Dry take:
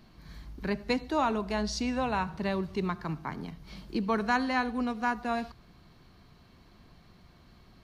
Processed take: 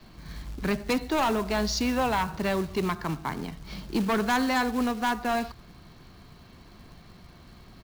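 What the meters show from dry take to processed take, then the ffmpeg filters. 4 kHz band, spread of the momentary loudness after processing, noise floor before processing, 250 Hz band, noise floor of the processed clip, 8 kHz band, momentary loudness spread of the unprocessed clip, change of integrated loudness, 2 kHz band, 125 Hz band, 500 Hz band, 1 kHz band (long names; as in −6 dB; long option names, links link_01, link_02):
+6.0 dB, 13 LU, −58 dBFS, +3.5 dB, −51 dBFS, +8.0 dB, 13 LU, +3.5 dB, +3.5 dB, +3.5 dB, +4.0 dB, +3.0 dB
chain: -af "adynamicequalizer=threshold=0.00501:dfrequency=170:dqfactor=1.4:tfrequency=170:tqfactor=1.4:attack=5:release=100:ratio=0.375:range=2:mode=cutabove:tftype=bell,aresample=16000,aresample=44100,aeval=exprs='0.158*(cos(1*acos(clip(val(0)/0.158,-1,1)))-cos(1*PI/2))+0.00447*(cos(3*acos(clip(val(0)/0.158,-1,1)))-cos(3*PI/2))+0.0398*(cos(5*acos(clip(val(0)/0.158,-1,1)))-cos(5*PI/2))+0.0126*(cos(6*acos(clip(val(0)/0.158,-1,1)))-cos(6*PI/2))+0.01*(cos(8*acos(clip(val(0)/0.158,-1,1)))-cos(8*PI/2))':channel_layout=same,acrusher=bits=4:mode=log:mix=0:aa=0.000001"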